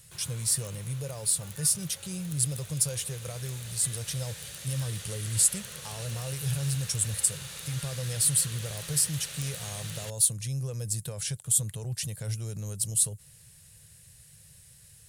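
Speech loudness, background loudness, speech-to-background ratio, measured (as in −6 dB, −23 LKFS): −29.0 LKFS, −40.5 LKFS, 11.5 dB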